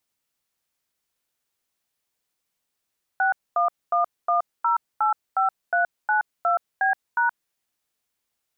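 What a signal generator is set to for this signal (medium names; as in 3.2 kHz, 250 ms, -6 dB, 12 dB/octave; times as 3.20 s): DTMF "6111085392B#", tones 123 ms, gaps 238 ms, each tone -20.5 dBFS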